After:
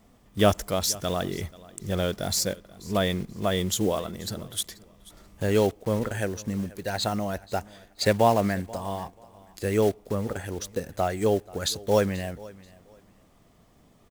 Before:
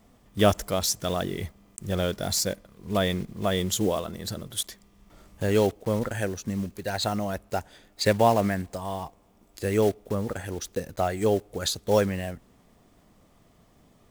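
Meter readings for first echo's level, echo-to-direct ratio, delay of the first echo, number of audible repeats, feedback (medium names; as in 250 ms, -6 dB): -21.0 dB, -21.0 dB, 484 ms, 2, 24%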